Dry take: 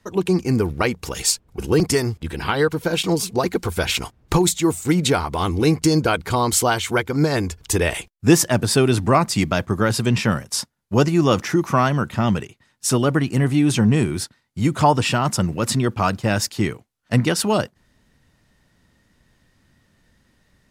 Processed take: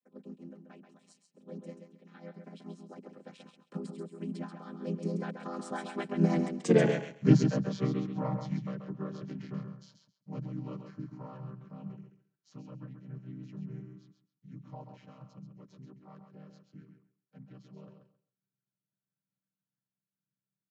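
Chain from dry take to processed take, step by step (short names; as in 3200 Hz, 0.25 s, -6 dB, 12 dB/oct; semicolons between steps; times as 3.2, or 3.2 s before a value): chord vocoder minor triad, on D3; Doppler pass-by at 6.76, 48 m/s, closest 12 m; feedback echo 0.134 s, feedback 18%, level -7 dB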